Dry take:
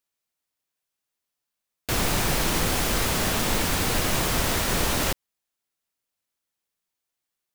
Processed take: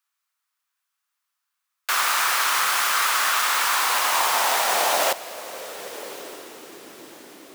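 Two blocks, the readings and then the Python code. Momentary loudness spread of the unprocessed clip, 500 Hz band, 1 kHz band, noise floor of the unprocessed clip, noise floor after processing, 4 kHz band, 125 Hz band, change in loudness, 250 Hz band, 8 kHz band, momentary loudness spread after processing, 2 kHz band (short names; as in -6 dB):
4 LU, 0.0 dB, +8.5 dB, -85 dBFS, -81 dBFS, +4.0 dB, under -25 dB, +4.0 dB, -15.0 dB, +3.5 dB, 15 LU, +6.5 dB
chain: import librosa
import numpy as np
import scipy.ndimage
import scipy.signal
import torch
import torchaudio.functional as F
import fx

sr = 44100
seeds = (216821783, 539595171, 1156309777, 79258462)

y = fx.echo_diffused(x, sr, ms=1175, feedback_pct=41, wet_db=-15.5)
y = fx.filter_sweep_highpass(y, sr, from_hz=1200.0, to_hz=320.0, start_s=3.5, end_s=6.98, q=2.7)
y = y * librosa.db_to_amplitude(3.0)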